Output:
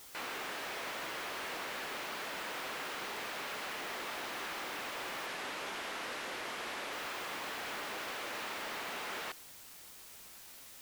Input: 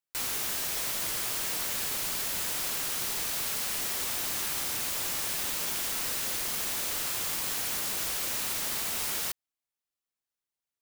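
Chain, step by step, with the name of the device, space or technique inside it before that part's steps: aircraft radio (BPF 300–2300 Hz; hard clip -37.5 dBFS, distortion -16 dB; white noise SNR 11 dB); 5.26–6.93 LPF 12000 Hz 12 dB/oct; gain +1.5 dB

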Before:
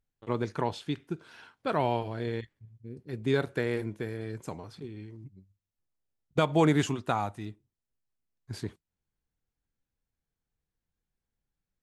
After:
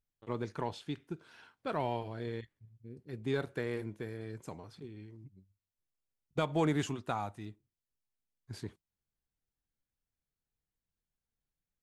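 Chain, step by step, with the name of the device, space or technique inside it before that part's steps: parallel distortion (in parallel at -13 dB: hard clip -29 dBFS, distortion -5 dB); on the sum: gain -7.5 dB

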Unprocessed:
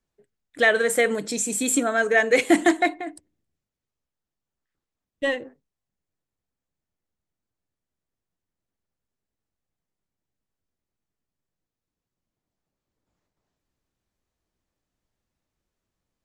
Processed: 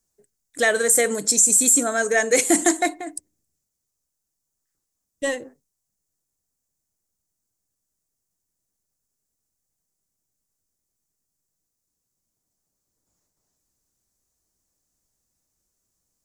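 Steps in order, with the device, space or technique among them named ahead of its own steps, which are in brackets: over-bright horn tweeter (resonant high shelf 4600 Hz +13.5 dB, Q 1.5; limiter -6 dBFS, peak gain reduction 10 dB)

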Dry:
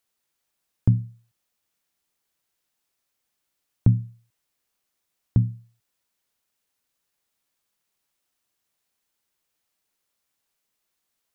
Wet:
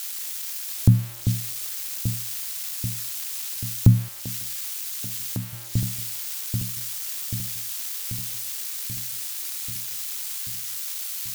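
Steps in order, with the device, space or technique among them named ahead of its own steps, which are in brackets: budget class-D amplifier (switching dead time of 0.062 ms; switching spikes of -21 dBFS); echo with dull and thin repeats by turns 0.393 s, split 860 Hz, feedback 81%, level -8 dB; 4.08–5.53 HPF 640 Hz 6 dB/oct; gain +3.5 dB

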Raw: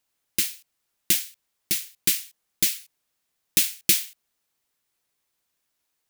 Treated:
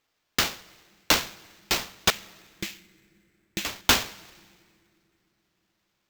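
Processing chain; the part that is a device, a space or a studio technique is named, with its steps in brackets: 2.1–3.65 air absorption 240 m; plate-style reverb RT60 4.2 s, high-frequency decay 0.4×, DRR 17 dB; early companding sampler (sample-rate reducer 10000 Hz, jitter 0%; companded quantiser 8-bit)

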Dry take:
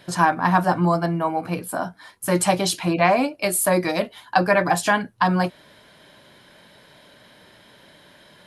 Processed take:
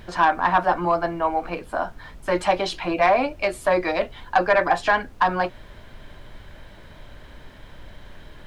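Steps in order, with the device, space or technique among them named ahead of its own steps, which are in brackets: aircraft cabin announcement (BPF 380–3100 Hz; soft clip -9.5 dBFS, distortion -19 dB; brown noise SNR 17 dB); gain +2 dB

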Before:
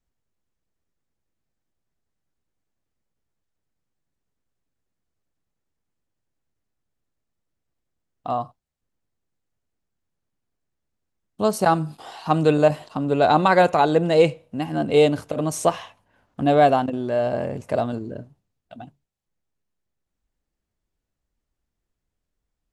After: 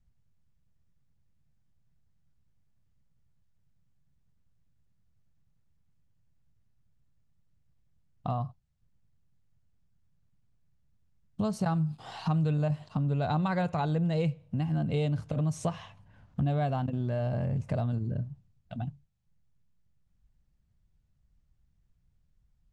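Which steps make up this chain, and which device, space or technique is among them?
jukebox (LPF 7500 Hz 12 dB/oct; resonant low shelf 220 Hz +13 dB, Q 1.5; compressor 3:1, threshold -29 dBFS, peak gain reduction 15.5 dB); gain -1.5 dB

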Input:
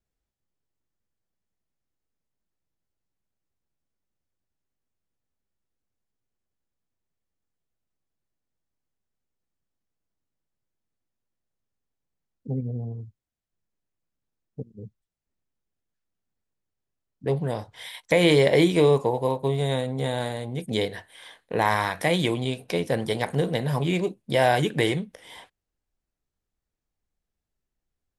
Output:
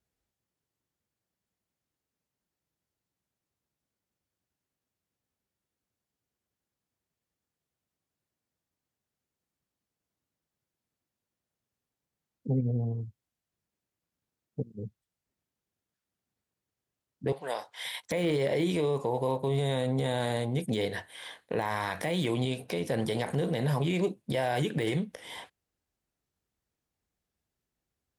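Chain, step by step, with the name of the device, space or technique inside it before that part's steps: 17.32–17.85 HPF 710 Hz 12 dB/oct; podcast mastering chain (HPF 68 Hz; de-esser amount 75%; compressor 3:1, threshold -24 dBFS, peak gain reduction 7.5 dB; limiter -21.5 dBFS, peak gain reduction 10 dB; gain +2.5 dB; MP3 128 kbps 44100 Hz)

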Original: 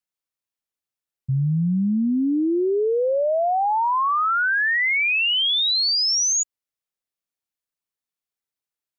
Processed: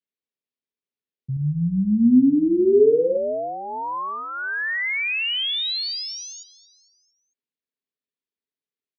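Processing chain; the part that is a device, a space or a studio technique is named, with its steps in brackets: frequency-shifting delay pedal into a guitar cabinet (frequency-shifting echo 0.226 s, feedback 49%, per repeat -90 Hz, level -19 dB; speaker cabinet 78–4400 Hz, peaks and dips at 91 Hz -6 dB, 250 Hz +10 dB, 420 Hz +10 dB, 790 Hz -9 dB, 1300 Hz -8 dB); 1.32–3.17 flutter echo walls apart 8.2 m, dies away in 0.45 s; gain -3.5 dB

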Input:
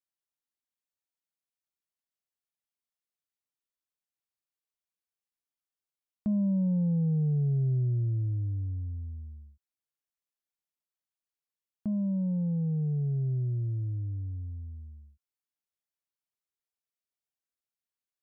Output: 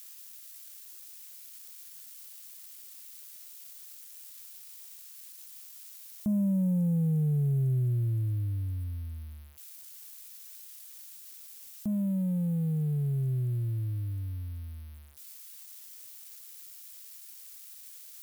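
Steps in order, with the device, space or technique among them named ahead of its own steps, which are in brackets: budget class-D amplifier (switching dead time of 0.058 ms; switching spikes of -34.5 dBFS)

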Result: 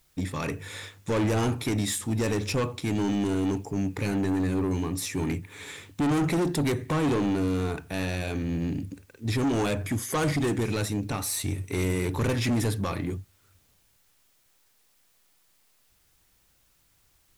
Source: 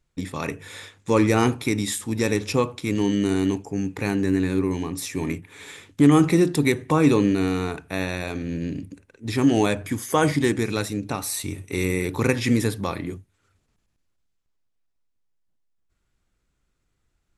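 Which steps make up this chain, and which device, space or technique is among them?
open-reel tape (soft clip -22.5 dBFS, distortion -6 dB; bell 96 Hz +5 dB 1.12 oct; white noise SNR 38 dB)

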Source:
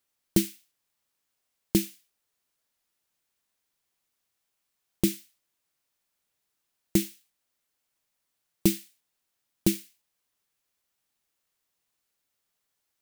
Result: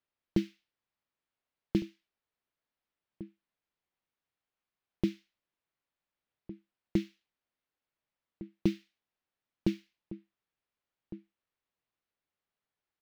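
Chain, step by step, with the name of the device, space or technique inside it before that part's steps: shout across a valley (air absorption 260 m; outdoor echo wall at 250 m, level -15 dB); gain -4.5 dB

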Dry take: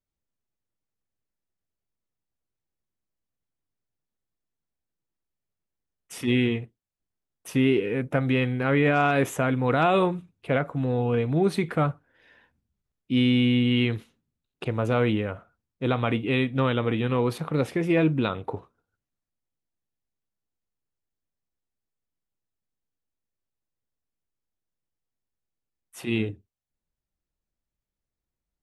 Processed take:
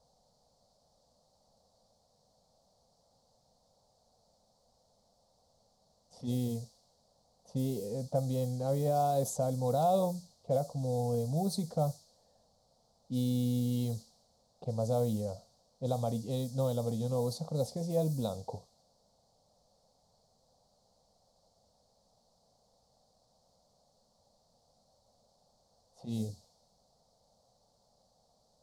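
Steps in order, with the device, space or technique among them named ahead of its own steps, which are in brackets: cassette deck with a dynamic noise filter (white noise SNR 23 dB; low-pass opened by the level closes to 1700 Hz, open at -18.5 dBFS); EQ curve 220 Hz 0 dB, 340 Hz -17 dB, 520 Hz +3 dB, 750 Hz +2 dB, 1600 Hz -28 dB, 2600 Hz -29 dB, 4400 Hz +8 dB; gain -6.5 dB

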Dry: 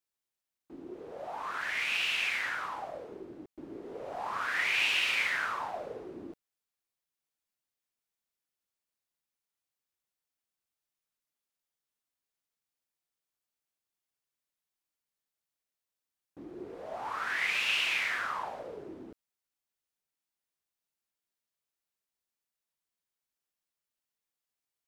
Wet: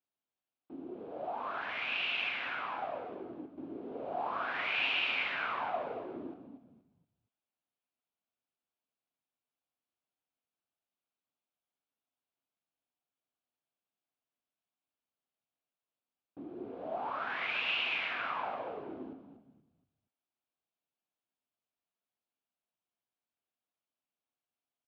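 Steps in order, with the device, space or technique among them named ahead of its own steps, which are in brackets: frequency-shifting delay pedal into a guitar cabinet (frequency-shifting echo 0.236 s, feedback 34%, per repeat -57 Hz, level -9.5 dB; speaker cabinet 84–3400 Hz, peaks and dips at 260 Hz +6 dB, 700 Hz +6 dB, 1900 Hz -9 dB); gain -1.5 dB

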